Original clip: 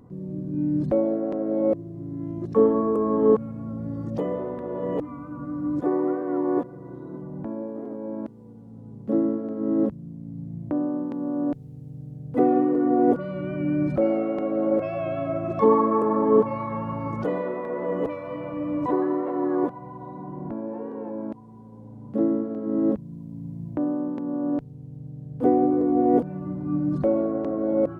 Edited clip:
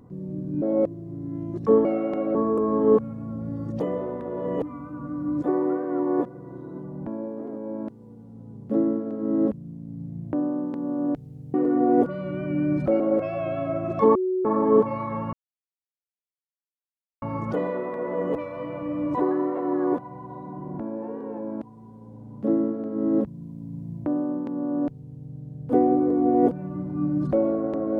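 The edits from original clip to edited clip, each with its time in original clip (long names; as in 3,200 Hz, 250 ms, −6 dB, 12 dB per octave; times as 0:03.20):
0:00.62–0:01.50: remove
0:11.92–0:12.64: remove
0:14.10–0:14.60: move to 0:02.73
0:15.75–0:16.05: beep over 371 Hz −21.5 dBFS
0:16.93: splice in silence 1.89 s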